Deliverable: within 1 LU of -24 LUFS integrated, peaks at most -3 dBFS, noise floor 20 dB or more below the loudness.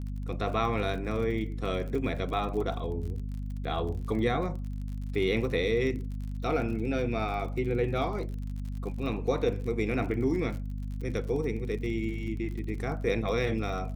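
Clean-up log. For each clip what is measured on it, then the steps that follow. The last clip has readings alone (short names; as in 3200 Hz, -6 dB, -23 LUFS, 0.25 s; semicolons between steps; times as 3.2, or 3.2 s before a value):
ticks 47/s; hum 50 Hz; harmonics up to 250 Hz; hum level -32 dBFS; loudness -31.0 LUFS; peak -13.5 dBFS; loudness target -24.0 LUFS
-> de-click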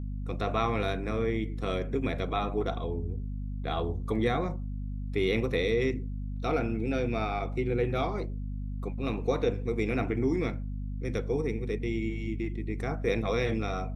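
ticks 0.072/s; hum 50 Hz; harmonics up to 250 Hz; hum level -32 dBFS
-> notches 50/100/150/200/250 Hz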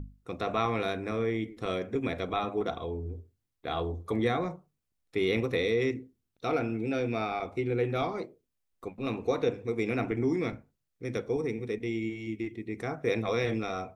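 hum none; loudness -31.5 LUFS; peak -13.5 dBFS; loudness target -24.0 LUFS
-> gain +7.5 dB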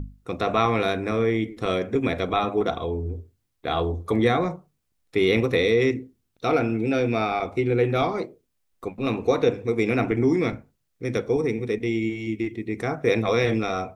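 loudness -24.0 LUFS; peak -6.0 dBFS; noise floor -73 dBFS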